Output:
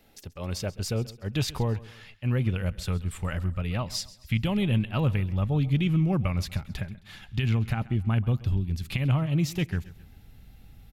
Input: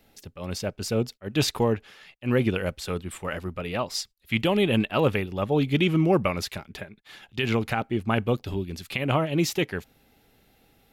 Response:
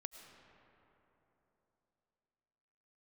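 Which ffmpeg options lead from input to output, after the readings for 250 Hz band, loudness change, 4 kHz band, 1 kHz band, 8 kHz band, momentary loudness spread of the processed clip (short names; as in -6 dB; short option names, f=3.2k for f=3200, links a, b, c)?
-3.0 dB, -2.0 dB, -5.0 dB, -8.0 dB, -4.0 dB, 10 LU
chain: -filter_complex "[0:a]asubboost=boost=9.5:cutoff=130,acompressor=threshold=-28dB:ratio=2,asplit=2[a][b];[b]aecho=0:1:133|266|399:0.112|0.046|0.0189[c];[a][c]amix=inputs=2:normalize=0"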